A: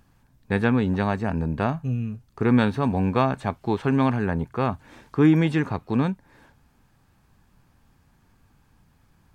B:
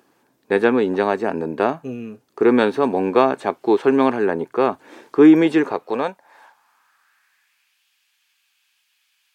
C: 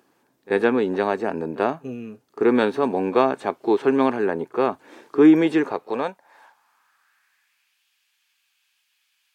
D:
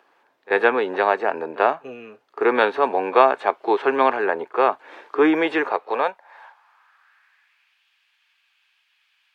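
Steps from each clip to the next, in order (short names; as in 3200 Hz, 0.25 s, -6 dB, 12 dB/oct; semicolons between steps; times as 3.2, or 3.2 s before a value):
high-pass sweep 370 Hz -> 2800 Hz, 5.58–7.78; gain +4 dB
pre-echo 38 ms -21 dB; gain -3 dB
three-band isolator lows -22 dB, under 480 Hz, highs -18 dB, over 3800 Hz; gain +7 dB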